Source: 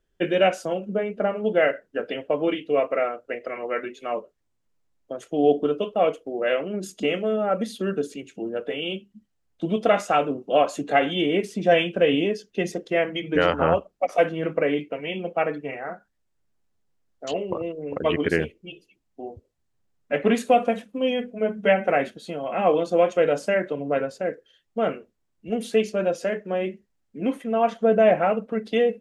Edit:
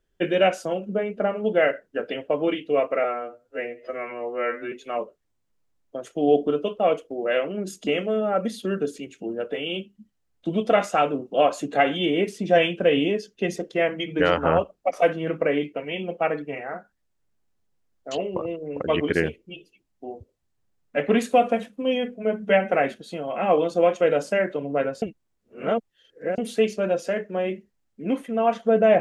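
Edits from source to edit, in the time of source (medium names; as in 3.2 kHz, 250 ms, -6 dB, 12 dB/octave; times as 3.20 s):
3.04–3.88 s: stretch 2×
24.18–25.54 s: reverse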